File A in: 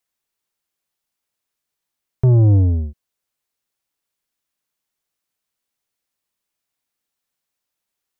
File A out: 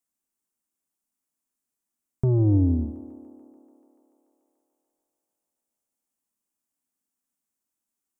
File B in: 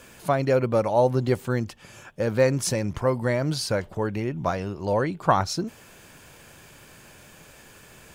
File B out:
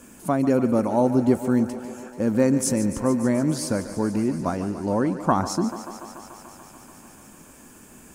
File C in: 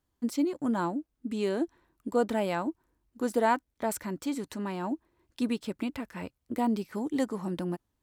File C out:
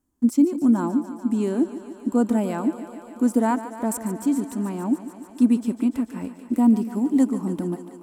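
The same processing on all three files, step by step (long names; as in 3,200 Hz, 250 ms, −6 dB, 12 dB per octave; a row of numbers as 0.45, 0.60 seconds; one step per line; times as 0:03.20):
graphic EQ with 10 bands 125 Hz −6 dB, 250 Hz +12 dB, 500 Hz −5 dB, 2,000 Hz −5 dB, 4,000 Hz −10 dB, 8,000 Hz +6 dB
feedback echo with a high-pass in the loop 145 ms, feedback 82%, high-pass 210 Hz, level −12.5 dB
loudness normalisation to −23 LKFS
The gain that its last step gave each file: −5.5, +0.5, +3.0 decibels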